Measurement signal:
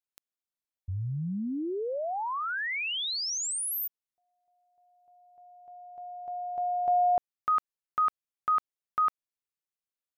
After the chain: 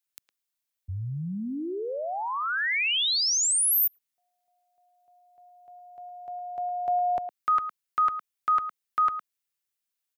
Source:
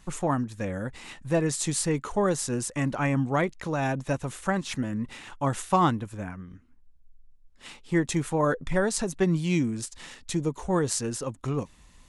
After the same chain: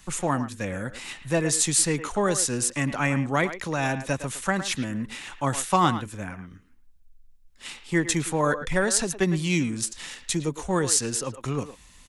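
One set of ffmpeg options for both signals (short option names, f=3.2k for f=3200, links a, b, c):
-filter_complex "[0:a]highshelf=f=10k:g=5,acrossover=split=140|1500[a][b][c];[c]acontrast=62[d];[a][b][d]amix=inputs=3:normalize=0,asplit=2[e][f];[f]adelay=110,highpass=300,lowpass=3.4k,asoftclip=type=hard:threshold=-12.5dB,volume=-11dB[g];[e][g]amix=inputs=2:normalize=0"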